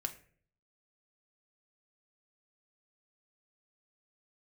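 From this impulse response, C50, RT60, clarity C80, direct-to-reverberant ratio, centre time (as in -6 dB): 14.0 dB, 0.50 s, 18.0 dB, 4.0 dB, 8 ms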